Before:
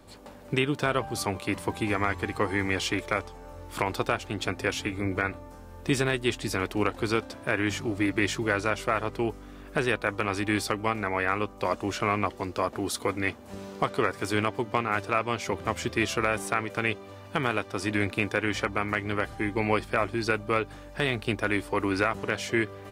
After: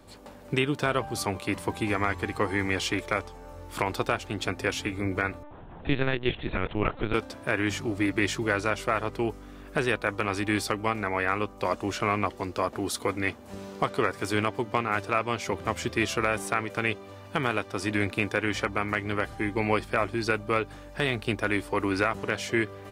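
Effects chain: 5.43–7.14 LPC vocoder at 8 kHz pitch kept

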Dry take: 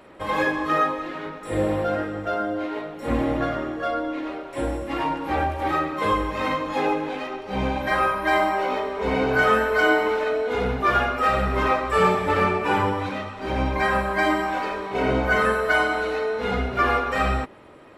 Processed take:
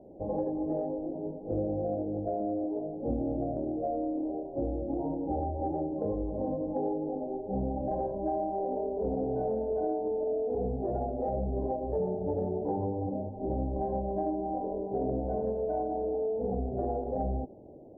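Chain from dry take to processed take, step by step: Wiener smoothing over 25 samples; elliptic low-pass 760 Hz, stop band 40 dB; compressor, threshold -28 dBFS, peak gain reduction 10.5 dB

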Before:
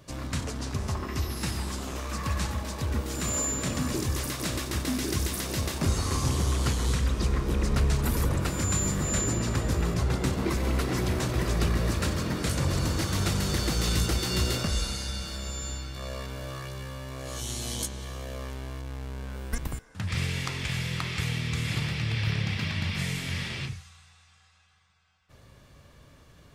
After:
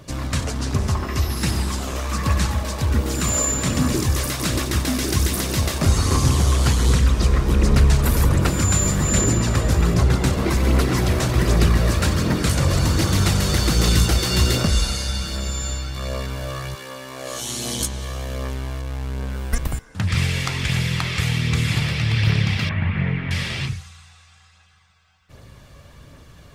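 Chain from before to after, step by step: 16.74–17.79 HPF 420 Hz -> 130 Hz 12 dB/oct; phaser 1.3 Hz, delay 1.9 ms, feedback 26%; 22.69–23.31 LPF 2200 Hz 24 dB/oct; gain +7.5 dB

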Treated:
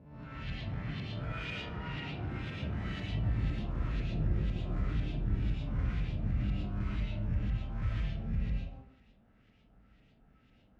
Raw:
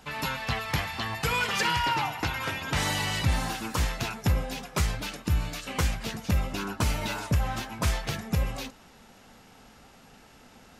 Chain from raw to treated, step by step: spectral swells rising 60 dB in 1.08 s; HPF 58 Hz; passive tone stack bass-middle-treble 10-0-1; echoes that change speed 0.247 s, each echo +5 st, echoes 3, each echo -6 dB; LFO low-pass saw up 2 Hz 610–3300 Hz; reverb RT60 0.60 s, pre-delay 75 ms, DRR -4.5 dB

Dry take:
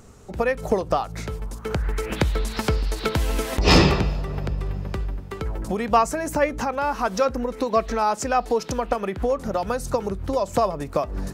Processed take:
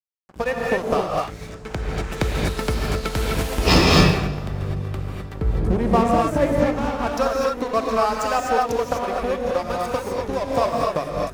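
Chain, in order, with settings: 1.24–2.11 LPF 8000 Hz 24 dB/oct; 5.34–7.07 tilt shelf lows +9 dB, about 680 Hz; crossover distortion -30 dBFS; non-linear reverb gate 0.28 s rising, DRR -2 dB

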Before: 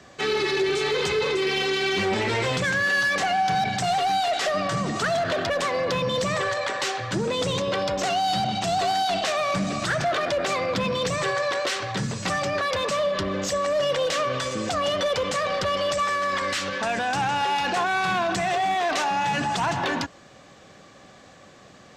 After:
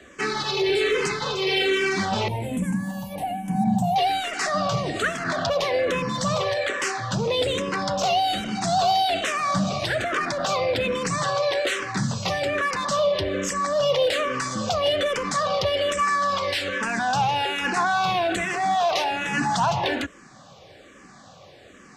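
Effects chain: 2.28–3.96 EQ curve 140 Hz 0 dB, 220 Hz +13 dB, 390 Hz -15 dB, 890 Hz 0 dB, 1300 Hz -24 dB, 2600 Hz -15 dB, 5100 Hz -24 dB, 10000 Hz +5 dB; endless phaser -1.2 Hz; gain +4 dB

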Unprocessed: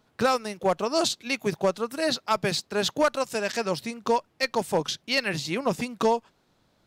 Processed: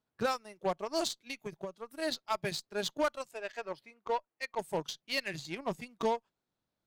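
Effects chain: spectral noise reduction 8 dB; 1.25–1.96 compressor 6:1, threshold -27 dBFS, peak gain reduction 8.5 dB; 3.31–4.59 tone controls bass -14 dB, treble -13 dB; added harmonics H 7 -24 dB, 8 -33 dB, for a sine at -13 dBFS; gain -8 dB

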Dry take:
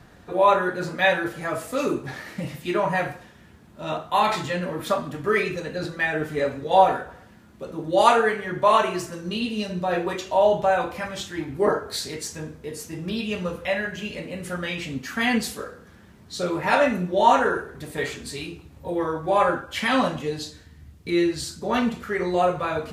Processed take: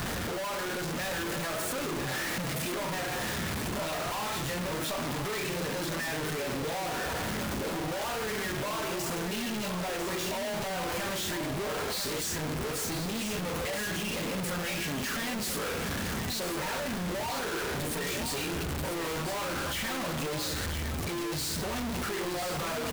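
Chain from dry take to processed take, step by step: infinite clipping; limiter -29 dBFS, peak gain reduction 4.5 dB; echo 0.996 s -8 dB; gain -4.5 dB

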